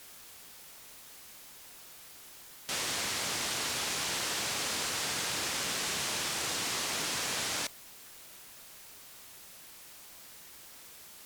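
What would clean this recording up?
noise reduction from a noise print 30 dB

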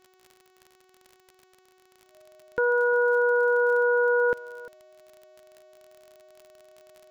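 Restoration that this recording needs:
click removal
hum removal 372.2 Hz, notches 20
notch filter 620 Hz, Q 30
echo removal 349 ms −18.5 dB

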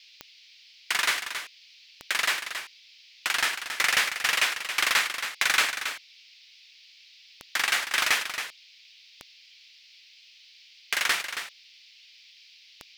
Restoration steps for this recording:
click removal
noise reduction from a noise print 19 dB
echo removal 274 ms −9 dB

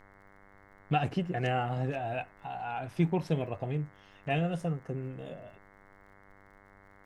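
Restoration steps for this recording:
click removal
hum removal 98.8 Hz, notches 22
downward expander −50 dBFS, range −21 dB

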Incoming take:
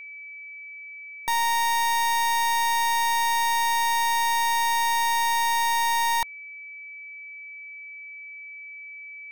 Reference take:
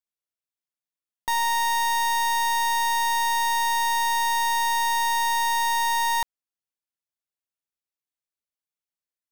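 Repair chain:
notch filter 2,300 Hz, Q 30

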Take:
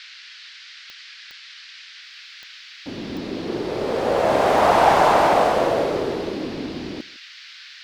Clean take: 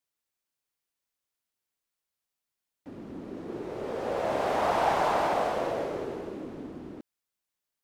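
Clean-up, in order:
click removal
noise reduction from a noise print 30 dB
echo removal 156 ms −22.5 dB
level 0 dB, from 0:02.02 −10.5 dB

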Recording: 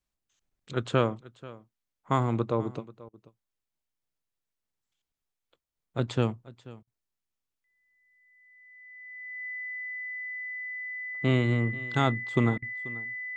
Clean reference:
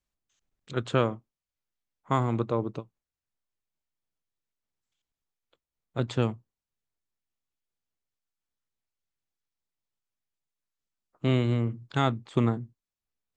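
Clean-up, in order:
notch filter 2,000 Hz, Q 30
repair the gap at 0:03.09/0:06.83/0:12.58, 42 ms
echo removal 486 ms −19.5 dB

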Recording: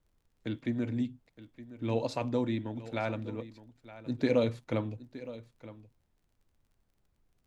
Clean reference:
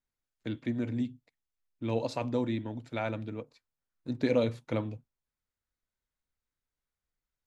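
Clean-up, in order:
click removal
downward expander −66 dBFS, range −21 dB
echo removal 917 ms −16 dB

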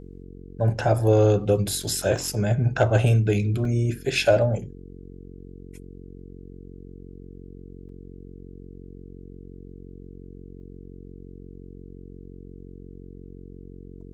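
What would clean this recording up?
clipped peaks rebuilt −8 dBFS
hum removal 45.7 Hz, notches 10
repair the gap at 0:01.83/0:02.18/0:03.65/0:07.89/0:10.60, 2.8 ms

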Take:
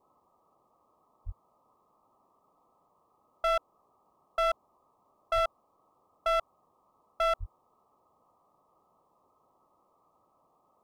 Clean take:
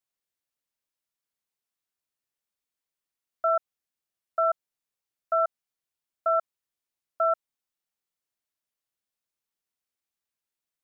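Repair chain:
clipped peaks rebuilt −23.5 dBFS
0:01.25–0:01.37: high-pass filter 140 Hz 24 dB per octave
0:05.34–0:05.46: high-pass filter 140 Hz 24 dB per octave
0:07.39–0:07.51: high-pass filter 140 Hz 24 dB per octave
noise reduction from a noise print 19 dB

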